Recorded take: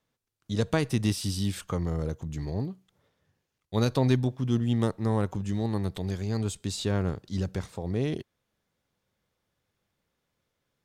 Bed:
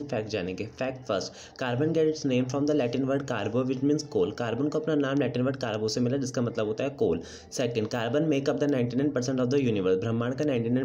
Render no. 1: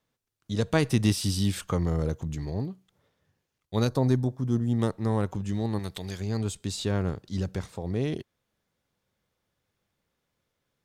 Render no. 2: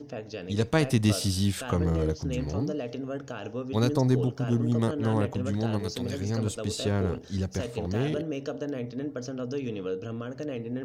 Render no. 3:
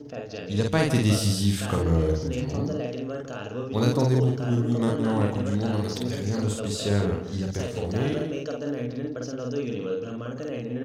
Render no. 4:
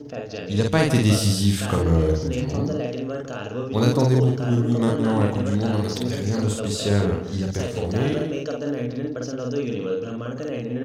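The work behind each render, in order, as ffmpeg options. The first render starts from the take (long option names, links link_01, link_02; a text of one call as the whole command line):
ffmpeg -i in.wav -filter_complex "[0:a]asettb=1/sr,asplit=3[link_01][link_02][link_03];[link_01]atrim=end=3.874[link_04];[link_02]atrim=start=3.87:end=4.79,asetpts=PTS-STARTPTS,afade=type=in:duration=0.004:curve=qsin,afade=type=out:start_time=0.916:duration=0.004:curve=qsin,equalizer=frequency=2800:width_type=o:width=1:gain=-13.5[link_05];[link_03]atrim=start=4.786[link_06];[link_04][link_05]acrossfade=duration=0.004:curve1=hsin:curve2=qsin[link_07];[link_07][link_06]acrossfade=duration=0.004:curve1=qsin:curve2=hsin,asettb=1/sr,asplit=3[link_08][link_09][link_10];[link_08]atrim=end=5.794[link_11];[link_09]atrim=start=5.79:end=6.2,asetpts=PTS-STARTPTS,afade=type=in:duration=0.004:curve=qsin,afade=type=out:start_time=0.406:duration=0.004:curve=qsin,tiltshelf=frequency=1100:gain=-5.5[link_12];[link_10]atrim=start=6.196[link_13];[link_11][link_12]acrossfade=duration=0.004:curve1=hsin:curve2=qsin[link_14];[link_14][link_13]acrossfade=duration=0.004:curve1=qsin:curve2=hsin,asplit=3[link_15][link_16][link_17];[link_15]atrim=end=0.752[link_18];[link_16]atrim=start=0.748:end=2.352,asetpts=PTS-STARTPTS,volume=3dB[link_19];[link_17]atrim=start=2.348[link_20];[link_18][link_19]acrossfade=duration=0.004:curve1=hsin:curve2=hsin[link_21];[link_21][link_20]acrossfade=duration=0.004:curve1=hsin:curve2=hsin" out.wav
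ffmpeg -i in.wav -i bed.wav -filter_complex "[1:a]volume=-7.5dB[link_01];[0:a][link_01]amix=inputs=2:normalize=0" out.wav
ffmpeg -i in.wav -filter_complex "[0:a]asplit=2[link_01][link_02];[link_02]adelay=49,volume=-2dB[link_03];[link_01][link_03]amix=inputs=2:normalize=0,asplit=2[link_04][link_05];[link_05]aecho=0:1:165:0.316[link_06];[link_04][link_06]amix=inputs=2:normalize=0" out.wav
ffmpeg -i in.wav -af "volume=3.5dB" out.wav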